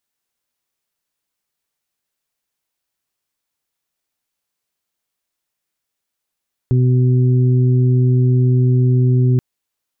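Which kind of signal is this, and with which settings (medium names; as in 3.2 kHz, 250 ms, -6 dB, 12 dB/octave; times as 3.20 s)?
steady additive tone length 2.68 s, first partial 126 Hz, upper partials -11/-13.5 dB, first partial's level -10.5 dB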